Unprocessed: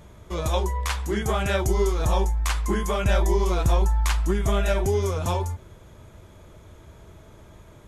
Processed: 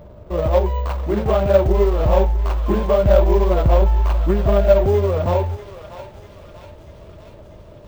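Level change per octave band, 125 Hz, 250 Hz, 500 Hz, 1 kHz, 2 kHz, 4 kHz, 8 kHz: +5.5 dB, +6.0 dB, +10.5 dB, +4.0 dB, -2.5 dB, -3.5 dB, under -10 dB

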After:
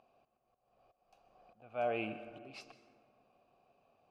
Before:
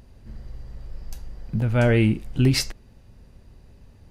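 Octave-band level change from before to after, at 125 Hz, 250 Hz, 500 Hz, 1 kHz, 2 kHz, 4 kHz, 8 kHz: -36.0 dB, -24.0 dB, -13.5 dB, -6.0 dB, -16.5 dB, -24.5 dB, under -30 dB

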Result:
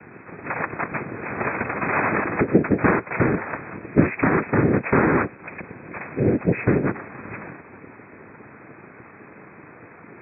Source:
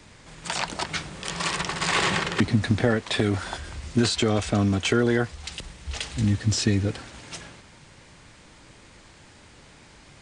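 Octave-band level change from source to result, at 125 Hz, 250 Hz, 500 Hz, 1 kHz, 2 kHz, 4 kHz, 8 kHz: 0.0 dB, +3.5 dB, +5.0 dB, +5.5 dB, +4.0 dB, under -40 dB, under -40 dB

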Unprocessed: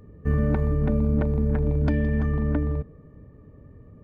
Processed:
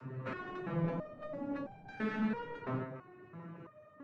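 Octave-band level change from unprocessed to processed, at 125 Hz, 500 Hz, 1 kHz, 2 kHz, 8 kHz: -19.0 dB, -12.0 dB, -3.0 dB, -5.0 dB, n/a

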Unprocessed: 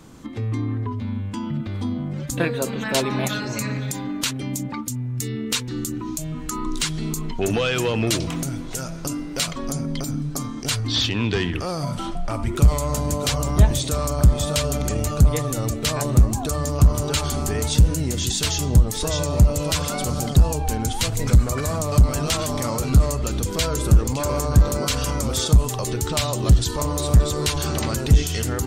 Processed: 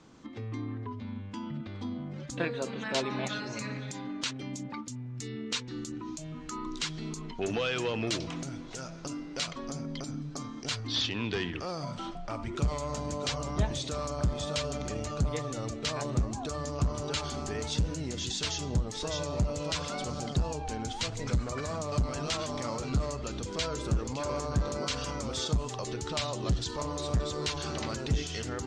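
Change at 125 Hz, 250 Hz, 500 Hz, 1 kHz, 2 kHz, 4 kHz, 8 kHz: -14.0, -10.5, -8.5, -8.0, -8.0, -8.0, -13.0 dB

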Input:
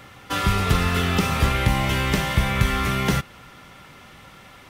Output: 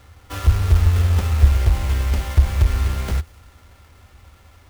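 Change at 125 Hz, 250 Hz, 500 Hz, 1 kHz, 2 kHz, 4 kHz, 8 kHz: +6.0, -9.5, -6.5, -9.0, -9.5, -8.5, -4.0 dB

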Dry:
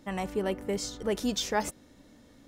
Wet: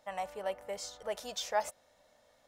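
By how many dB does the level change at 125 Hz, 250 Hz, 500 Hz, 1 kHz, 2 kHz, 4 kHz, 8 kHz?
under -20 dB, -22.5 dB, -5.5 dB, -2.0 dB, -5.5 dB, -6.5 dB, -6.5 dB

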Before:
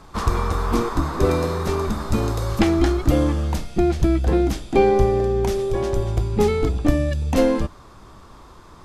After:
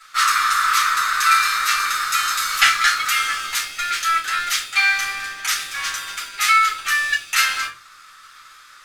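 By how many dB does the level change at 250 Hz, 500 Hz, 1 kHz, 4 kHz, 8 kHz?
under -30 dB, under -30 dB, +8.0 dB, +15.0 dB, +15.0 dB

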